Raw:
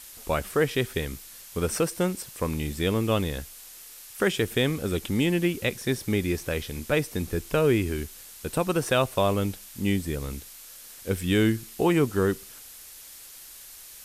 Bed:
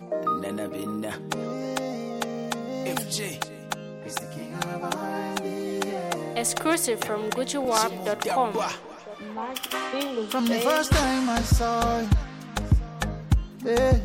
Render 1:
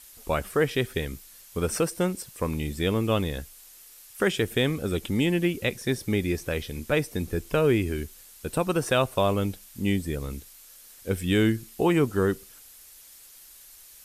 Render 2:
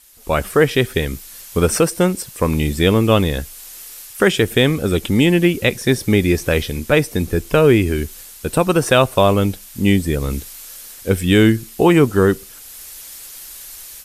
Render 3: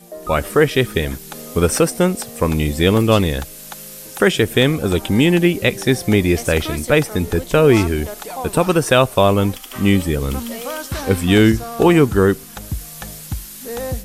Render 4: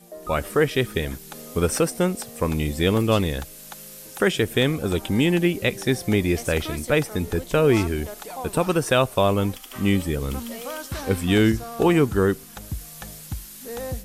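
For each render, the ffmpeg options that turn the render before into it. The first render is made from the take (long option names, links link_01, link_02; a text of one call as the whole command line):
ffmpeg -i in.wav -af "afftdn=noise_reduction=6:noise_floor=-46" out.wav
ffmpeg -i in.wav -af "dynaudnorm=framelen=200:gausssize=3:maxgain=14dB" out.wav
ffmpeg -i in.wav -i bed.wav -filter_complex "[1:a]volume=-5dB[link_01];[0:a][link_01]amix=inputs=2:normalize=0" out.wav
ffmpeg -i in.wav -af "volume=-6dB" out.wav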